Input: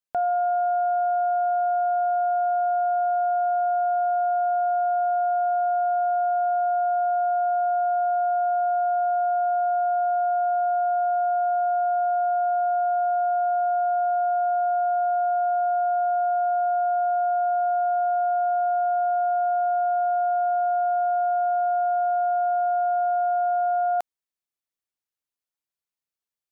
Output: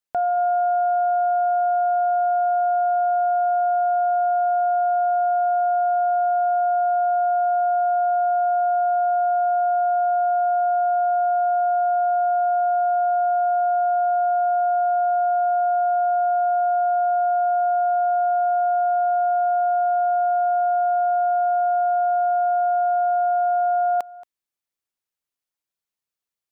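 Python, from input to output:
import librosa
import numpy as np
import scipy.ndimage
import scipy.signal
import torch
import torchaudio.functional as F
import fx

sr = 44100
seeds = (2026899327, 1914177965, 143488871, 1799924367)

y = x + 10.0 ** (-19.5 / 20.0) * np.pad(x, (int(227 * sr / 1000.0), 0))[:len(x)]
y = y * librosa.db_to_amplitude(2.0)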